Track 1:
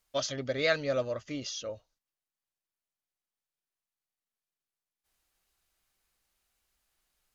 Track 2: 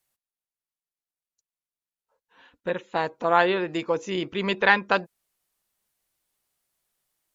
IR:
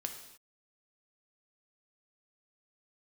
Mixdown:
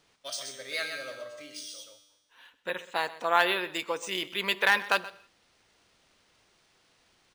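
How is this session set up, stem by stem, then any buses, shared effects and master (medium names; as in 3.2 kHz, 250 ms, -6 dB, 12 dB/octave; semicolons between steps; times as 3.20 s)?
+3.0 dB, 0.10 s, no send, echo send -6 dB, feedback comb 100 Hz, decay 1.1 s, harmonics all, mix 80%; auto duck -16 dB, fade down 0.90 s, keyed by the second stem
-5.0 dB, 0.00 s, send -11 dB, echo send -16 dB, de-esser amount 65%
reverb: on, pre-delay 3 ms
echo: delay 127 ms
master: tilt EQ +4.5 dB/octave; decimation joined by straight lines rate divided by 3×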